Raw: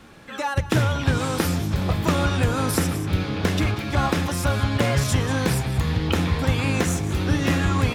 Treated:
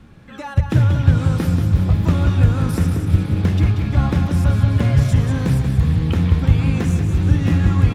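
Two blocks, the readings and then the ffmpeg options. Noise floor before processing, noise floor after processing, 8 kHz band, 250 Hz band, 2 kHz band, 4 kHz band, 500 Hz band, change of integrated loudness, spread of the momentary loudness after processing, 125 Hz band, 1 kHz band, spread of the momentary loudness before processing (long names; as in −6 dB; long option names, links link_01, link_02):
−35 dBFS, −37 dBFS, can't be measured, +3.5 dB, −4.5 dB, −6.0 dB, −3.0 dB, +5.5 dB, 3 LU, +8.0 dB, −4.5 dB, 3 LU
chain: -filter_complex "[0:a]bass=frequency=250:gain=14,treble=frequency=4000:gain=-4,asplit=2[link_01][link_02];[link_02]aecho=0:1:184|368|552|736|920|1104|1288:0.422|0.24|0.137|0.0781|0.0445|0.0254|0.0145[link_03];[link_01][link_03]amix=inputs=2:normalize=0,volume=-5.5dB"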